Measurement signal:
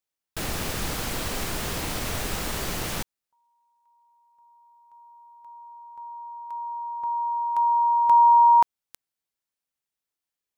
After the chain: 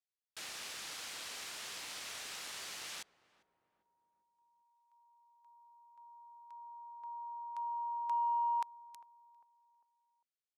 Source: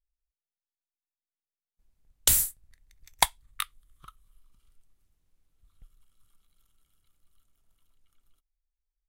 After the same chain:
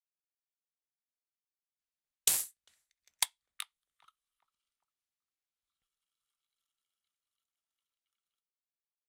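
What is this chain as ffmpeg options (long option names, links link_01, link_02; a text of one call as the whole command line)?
ffmpeg -i in.wav -filter_complex "[0:a]aderivative,asplit=2[link_01][link_02];[link_02]adelay=400,lowpass=frequency=1000:poles=1,volume=-18.5dB,asplit=2[link_03][link_04];[link_04]adelay=400,lowpass=frequency=1000:poles=1,volume=0.51,asplit=2[link_05][link_06];[link_06]adelay=400,lowpass=frequency=1000:poles=1,volume=0.51,asplit=2[link_07][link_08];[link_08]adelay=400,lowpass=frequency=1000:poles=1,volume=0.51[link_09];[link_01][link_03][link_05][link_07][link_09]amix=inputs=5:normalize=0,adynamicsmooth=sensitivity=1.5:basefreq=4300" out.wav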